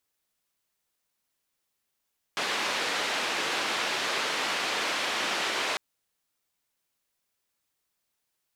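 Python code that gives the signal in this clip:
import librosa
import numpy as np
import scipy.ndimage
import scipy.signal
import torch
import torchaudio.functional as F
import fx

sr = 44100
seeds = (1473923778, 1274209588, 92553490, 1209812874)

y = fx.band_noise(sr, seeds[0], length_s=3.4, low_hz=320.0, high_hz=3300.0, level_db=-29.5)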